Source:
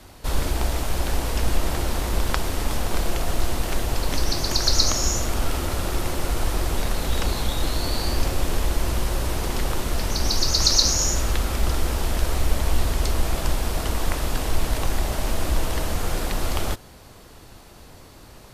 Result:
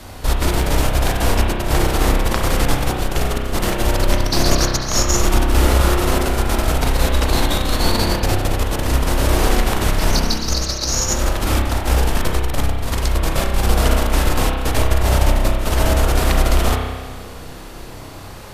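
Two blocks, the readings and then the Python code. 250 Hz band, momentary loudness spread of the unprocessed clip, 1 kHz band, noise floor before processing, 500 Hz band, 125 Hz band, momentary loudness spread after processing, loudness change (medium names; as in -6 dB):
+9.0 dB, 7 LU, +8.5 dB, -46 dBFS, +8.5 dB, +8.0 dB, 5 LU, +6.0 dB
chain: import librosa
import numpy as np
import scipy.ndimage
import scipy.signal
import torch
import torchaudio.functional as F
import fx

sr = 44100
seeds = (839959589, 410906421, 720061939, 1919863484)

y = fx.over_compress(x, sr, threshold_db=-23.0, ratio=-0.5)
y = fx.rev_spring(y, sr, rt60_s=1.5, pass_ms=(31,), chirp_ms=65, drr_db=0.0)
y = y * 10.0 ** (5.5 / 20.0)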